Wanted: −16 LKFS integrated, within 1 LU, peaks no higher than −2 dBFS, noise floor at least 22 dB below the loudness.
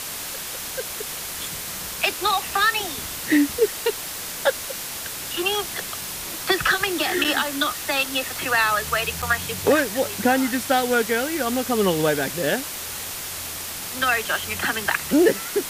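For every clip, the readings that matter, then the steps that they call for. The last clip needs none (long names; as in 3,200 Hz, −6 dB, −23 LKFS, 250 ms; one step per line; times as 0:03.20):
number of dropouts 2; longest dropout 6.5 ms; background noise floor −32 dBFS; target noise floor −45 dBFS; integrated loudness −23.0 LKFS; sample peak −5.0 dBFS; target loudness −16.0 LKFS
→ repair the gap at 0:07.24/0:09.22, 6.5 ms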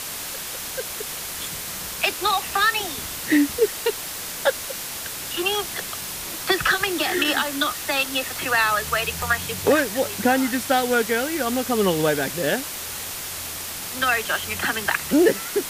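number of dropouts 0; background noise floor −32 dBFS; target noise floor −45 dBFS
→ broadband denoise 13 dB, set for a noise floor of −32 dBFS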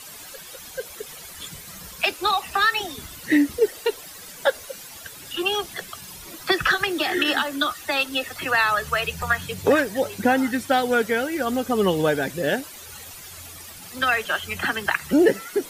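background noise floor −41 dBFS; target noise floor −45 dBFS
→ broadband denoise 6 dB, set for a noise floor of −41 dBFS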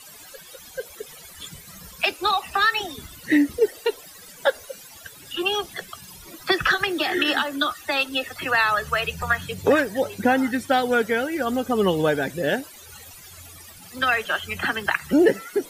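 background noise floor −45 dBFS; integrated loudness −22.5 LKFS; sample peak −5.5 dBFS; target loudness −16.0 LKFS
→ level +6.5 dB
brickwall limiter −2 dBFS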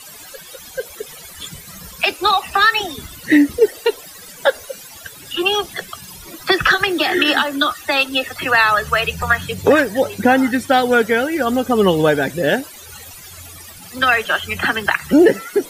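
integrated loudness −16.0 LKFS; sample peak −2.0 dBFS; background noise floor −38 dBFS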